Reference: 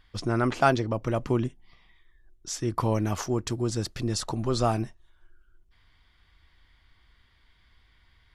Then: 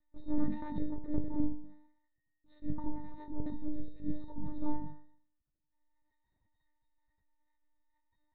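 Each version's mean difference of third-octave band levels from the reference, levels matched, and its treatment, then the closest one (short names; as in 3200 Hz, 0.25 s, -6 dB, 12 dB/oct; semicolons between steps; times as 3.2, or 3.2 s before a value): 12.5 dB: octave resonator A#, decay 0.64 s; monotone LPC vocoder at 8 kHz 300 Hz; gain +8.5 dB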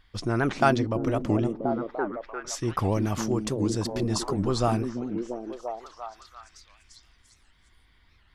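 3.5 dB: delay with a stepping band-pass 0.343 s, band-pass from 230 Hz, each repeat 0.7 oct, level 0 dB; record warp 78 rpm, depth 250 cents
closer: second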